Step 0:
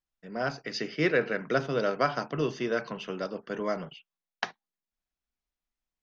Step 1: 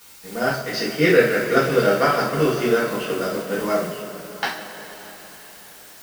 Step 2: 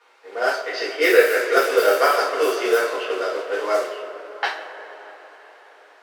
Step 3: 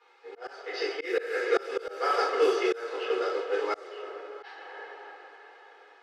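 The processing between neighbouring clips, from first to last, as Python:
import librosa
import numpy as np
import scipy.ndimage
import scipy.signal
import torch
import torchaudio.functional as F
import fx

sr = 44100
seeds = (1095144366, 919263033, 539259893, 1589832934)

y1 = fx.dmg_noise_colour(x, sr, seeds[0], colour='white', level_db=-49.0)
y1 = np.sign(y1) * np.maximum(np.abs(y1) - 10.0 ** (-51.0 / 20.0), 0.0)
y1 = fx.rev_double_slope(y1, sr, seeds[1], early_s=0.42, late_s=4.9, knee_db=-17, drr_db=-7.0)
y1 = y1 * 10.0 ** (2.5 / 20.0)
y2 = fx.env_lowpass(y1, sr, base_hz=1600.0, full_db=-13.0)
y2 = scipy.signal.sosfilt(scipy.signal.butter(6, 380.0, 'highpass', fs=sr, output='sos'), y2)
y2 = fx.high_shelf(y2, sr, hz=11000.0, db=9.0)
y2 = y2 * 10.0 ** (1.5 / 20.0)
y3 = fx.auto_swell(y2, sr, attack_ms=351.0)
y3 = scipy.signal.sosfilt(scipy.signal.butter(2, 5600.0, 'lowpass', fs=sr, output='sos'), y3)
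y3 = y3 + 0.69 * np.pad(y3, (int(2.4 * sr / 1000.0), 0))[:len(y3)]
y3 = y3 * 10.0 ** (-6.5 / 20.0)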